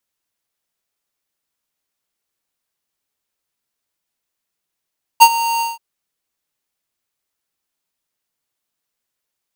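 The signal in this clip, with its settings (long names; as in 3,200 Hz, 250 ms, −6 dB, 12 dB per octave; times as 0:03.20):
note with an ADSR envelope square 924 Hz, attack 23 ms, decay 60 ms, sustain −15.5 dB, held 0.41 s, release 170 ms −3 dBFS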